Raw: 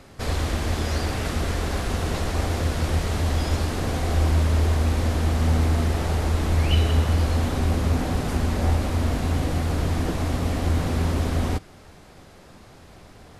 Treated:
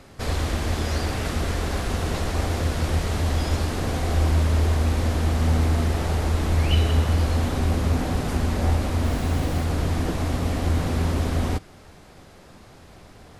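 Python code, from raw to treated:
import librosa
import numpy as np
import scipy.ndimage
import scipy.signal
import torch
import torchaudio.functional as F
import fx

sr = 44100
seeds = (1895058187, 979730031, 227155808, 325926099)

y = fx.dmg_noise_colour(x, sr, seeds[0], colour='pink', level_db=-44.0, at=(9.03, 9.63), fade=0.02)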